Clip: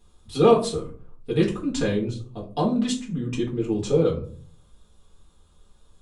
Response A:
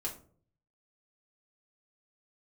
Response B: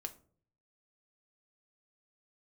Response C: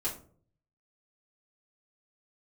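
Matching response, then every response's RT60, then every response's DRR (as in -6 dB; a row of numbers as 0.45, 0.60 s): C; 0.50, 0.50, 0.50 s; -3.5, 6.0, -7.5 dB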